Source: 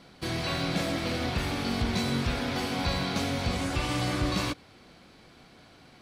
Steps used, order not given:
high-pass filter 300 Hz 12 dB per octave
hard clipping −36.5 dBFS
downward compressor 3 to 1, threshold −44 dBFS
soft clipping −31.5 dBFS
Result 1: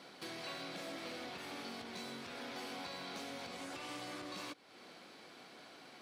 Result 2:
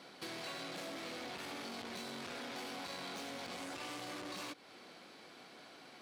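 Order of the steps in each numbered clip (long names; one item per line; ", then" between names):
downward compressor, then soft clipping, then hard clipping, then high-pass filter
soft clipping, then high-pass filter, then downward compressor, then hard clipping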